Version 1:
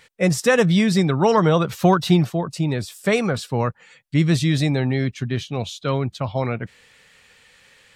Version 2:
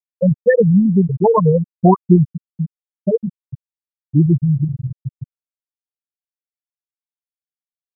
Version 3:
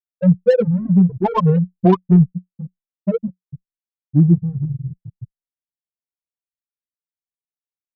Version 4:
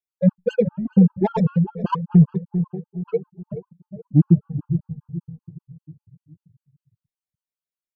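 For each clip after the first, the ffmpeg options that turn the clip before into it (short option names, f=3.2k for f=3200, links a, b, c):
-af "afftfilt=real='re*gte(hypot(re,im),1)':imag='im*gte(hypot(re,im),1)':win_size=1024:overlap=0.75,volume=6dB"
-filter_complex "[0:a]adynamicequalizer=threshold=0.0562:dfrequency=180:dqfactor=7.5:tfrequency=180:tqfactor=7.5:attack=5:release=100:ratio=0.375:range=2.5:mode=boostabove:tftype=bell,adynamicsmooth=sensitivity=0.5:basefreq=850,asplit=2[a][b];[b]adelay=5.3,afreqshift=1.5[c];[a][c]amix=inputs=2:normalize=1"
-filter_complex "[0:a]asplit=2[a][b];[b]adelay=425,lowpass=f=840:p=1,volume=-11dB,asplit=2[c][d];[d]adelay=425,lowpass=f=840:p=1,volume=0.49,asplit=2[e][f];[f]adelay=425,lowpass=f=840:p=1,volume=0.49,asplit=2[g][h];[h]adelay=425,lowpass=f=840:p=1,volume=0.49,asplit=2[i][j];[j]adelay=425,lowpass=f=840:p=1,volume=0.49[k];[c][e][g][i][k]amix=inputs=5:normalize=0[l];[a][l]amix=inputs=2:normalize=0,afftfilt=real='re*gt(sin(2*PI*5.1*pts/sr)*(1-2*mod(floor(b*sr/1024/830),2)),0)':imag='im*gt(sin(2*PI*5.1*pts/sr)*(1-2*mod(floor(b*sr/1024/830),2)),0)':win_size=1024:overlap=0.75"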